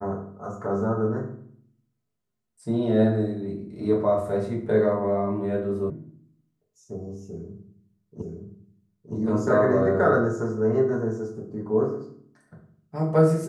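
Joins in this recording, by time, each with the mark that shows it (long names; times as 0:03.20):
0:05.90: cut off before it has died away
0:08.22: the same again, the last 0.92 s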